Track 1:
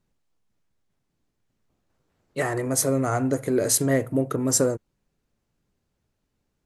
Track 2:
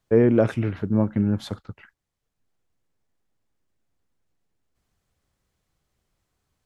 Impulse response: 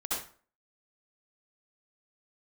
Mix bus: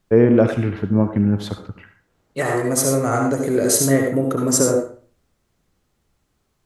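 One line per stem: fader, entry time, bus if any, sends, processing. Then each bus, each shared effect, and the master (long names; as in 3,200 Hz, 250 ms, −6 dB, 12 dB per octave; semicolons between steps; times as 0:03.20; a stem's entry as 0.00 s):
0.0 dB, 0.00 s, send −3.5 dB, no processing
+2.5 dB, 0.00 s, send −12 dB, no processing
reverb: on, RT60 0.45 s, pre-delay 58 ms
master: no processing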